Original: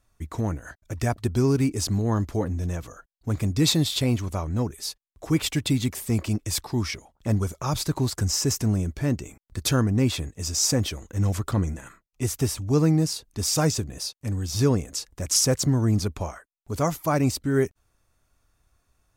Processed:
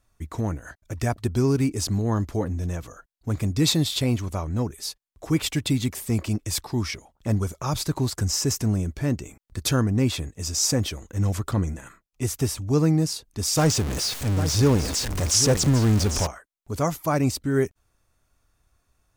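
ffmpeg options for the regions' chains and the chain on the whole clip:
ffmpeg -i in.wav -filter_complex "[0:a]asettb=1/sr,asplit=3[link_01][link_02][link_03];[link_01]atrim=end=13.574[link_04];[link_02]atrim=start=13.57:end=16.27,asetpts=PTS-STARTPTS,afade=type=in:duration=0.004:curve=qsin,afade=type=out:start_time=2.696:duration=0.004:curve=qsin,aeval=exprs='val(0)+0.5*0.0668*sgn(val(0))':channel_layout=same,acrossover=split=9200[link_05][link_06];[link_06]acompressor=threshold=-37dB:ratio=4:attack=1:release=60[link_07];[link_05][link_07]amix=inputs=2:normalize=0,aecho=1:1:798:0.316,atrim=end_sample=119070[link_08];[link_03]atrim=start=16.266[link_09];[link_04][link_08]acrossfade=duration=0.004:curve1=hsin:curve2=qsin[link_10];[link_10][link_09]acrossfade=duration=0.004:curve1=qsin:curve2=hsin" out.wav

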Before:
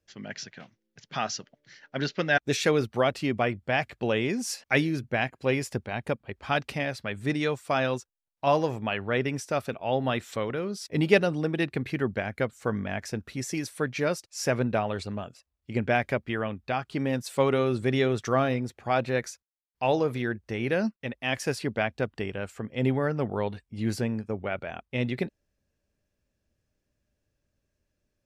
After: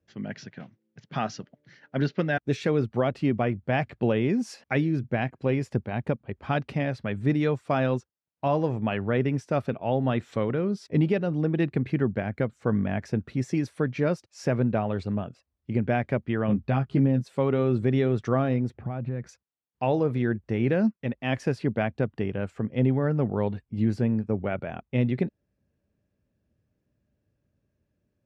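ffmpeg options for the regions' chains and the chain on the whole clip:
ffmpeg -i in.wav -filter_complex "[0:a]asettb=1/sr,asplit=3[link_01][link_02][link_03];[link_01]atrim=end=16.484[link_04];[link_02]atrim=start=16.48:end=17.28,asetpts=PTS-STARTPTS,afade=type=in:duration=0.004:curve=qsin,afade=type=out:start_time=0.796:duration=0.004:curve=qsin,lowshelf=frequency=330:gain=7,asplit=2[link_05][link_06];[link_06]adelay=15,volume=-4.5dB[link_07];[link_05][link_07]amix=inputs=2:normalize=0,atrim=end_sample=35280[link_08];[link_03]atrim=start=17.276[link_09];[link_04][link_08]acrossfade=duration=0.004:curve1=hsin:curve2=qsin[link_10];[link_10][link_09]acrossfade=duration=0.004:curve1=qsin:curve2=hsin,asettb=1/sr,asplit=3[link_11][link_12][link_13];[link_11]atrim=end=18.744[link_14];[link_12]atrim=start=18.74:end=19.29,asetpts=PTS-STARTPTS,afade=type=in:duration=0.004:curve=qsin,afade=type=out:start_time=0.546:duration=0.004:curve=qsin,bass=frequency=250:gain=11,treble=frequency=4000:gain=-15,acompressor=threshold=-35dB:ratio=4:attack=3.2:release=140:knee=1:detection=peak[link_15];[link_13]atrim=start=19.286[link_16];[link_14][link_15]acrossfade=duration=0.004:curve1=hsin:curve2=qsin[link_17];[link_17][link_16]acrossfade=duration=0.004:curve1=qsin:curve2=hsin,highpass=140,aemphasis=mode=reproduction:type=riaa,alimiter=limit=-14dB:level=0:latency=1:release=441" out.wav

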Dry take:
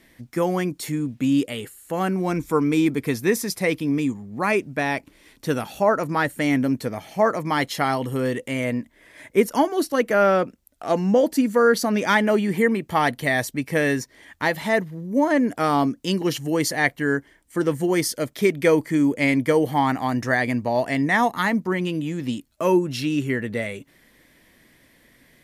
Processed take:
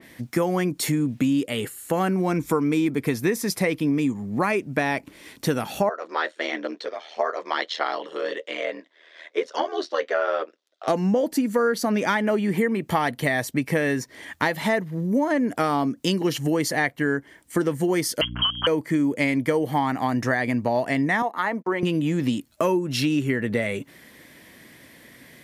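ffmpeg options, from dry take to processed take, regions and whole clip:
ffmpeg -i in.wav -filter_complex "[0:a]asettb=1/sr,asplit=3[link_01][link_02][link_03];[link_01]atrim=end=5.894[link_04];[link_02]atrim=start=5.89:end=10.88,asetpts=PTS-STARTPTS,afade=type=in:duration=0.004:curve=qsin,afade=type=out:start_time=4.986:duration=0.004:curve=qsin,flanger=delay=6.2:depth=3.7:regen=-48:speed=1.1:shape=triangular,aeval=exprs='val(0)*sin(2*PI*40*n/s)':channel_layout=same,highpass=frequency=430:width=0.5412,highpass=frequency=430:width=1.3066,equalizer=frequency=850:width_type=q:width=4:gain=-5,equalizer=frequency=2300:width_type=q:width=4:gain=-4,equalizer=frequency=3600:width_type=q:width=4:gain=7,lowpass=frequency=5400:width=0.5412,lowpass=frequency=5400:width=1.3066[link_05];[link_03]atrim=start=10.876[link_06];[link_04][link_05]acrossfade=duration=0.004:curve1=hsin:curve2=qsin[link_07];[link_07][link_06]acrossfade=duration=0.004:curve1=qsin:curve2=hsin,asettb=1/sr,asplit=3[link_08][link_09][link_10];[link_08]atrim=end=18.214[link_11];[link_09]atrim=start=18.21:end=18.67,asetpts=PTS-STARTPTS,afade=type=in:duration=0.004:curve=qsin,afade=type=out:start_time=0.456:duration=0.004:curve=qsin,lowpass=frequency=2900:width_type=q:width=0.5098,lowpass=frequency=2900:width_type=q:width=0.6013,lowpass=frequency=2900:width_type=q:width=0.9,lowpass=frequency=2900:width_type=q:width=2.563,afreqshift=-3400,aeval=exprs='val(0)+0.0224*(sin(2*PI*60*n/s)+sin(2*PI*2*60*n/s)/2+sin(2*PI*3*60*n/s)/3+sin(2*PI*4*60*n/s)/4+sin(2*PI*5*60*n/s)/5)':channel_layout=same[link_12];[link_10]atrim=start=18.666[link_13];[link_11][link_12]acrossfade=duration=0.004:curve1=hsin:curve2=qsin[link_14];[link_14][link_13]acrossfade=duration=0.004:curve1=qsin:curve2=hsin,asettb=1/sr,asplit=3[link_15][link_16][link_17];[link_15]atrim=end=21.224[link_18];[link_16]atrim=start=21.22:end=21.83,asetpts=PTS-STARTPTS,afade=type=in:duration=0.004:curve=qsin,afade=type=out:start_time=0.606:duration=0.004:curve=qsin,highpass=450,agate=range=-33dB:threshold=-44dB:ratio=16:release=100:detection=peak,highshelf=frequency=2000:gain=-12[link_19];[link_17]atrim=start=21.826[link_20];[link_18][link_19]acrossfade=duration=0.004:curve1=hsin:curve2=qsin[link_21];[link_21][link_20]acrossfade=duration=0.004:curve1=qsin:curve2=hsin,highpass=85,acompressor=threshold=-27dB:ratio=6,adynamicequalizer=threshold=0.00562:dfrequency=3000:dqfactor=0.7:tfrequency=3000:tqfactor=0.7:attack=5:release=100:ratio=0.375:range=2:mode=cutabove:tftype=highshelf,volume=7.5dB" out.wav

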